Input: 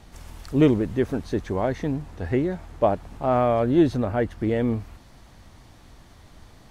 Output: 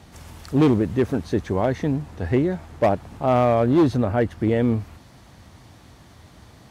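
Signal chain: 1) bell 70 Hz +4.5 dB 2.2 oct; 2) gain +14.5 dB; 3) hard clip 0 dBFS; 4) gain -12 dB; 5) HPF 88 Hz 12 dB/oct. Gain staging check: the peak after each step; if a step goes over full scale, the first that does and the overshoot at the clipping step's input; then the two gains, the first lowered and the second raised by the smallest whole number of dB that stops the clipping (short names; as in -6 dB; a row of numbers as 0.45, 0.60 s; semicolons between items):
-6.5, +8.0, 0.0, -12.0, -7.5 dBFS; step 2, 8.0 dB; step 2 +6.5 dB, step 4 -4 dB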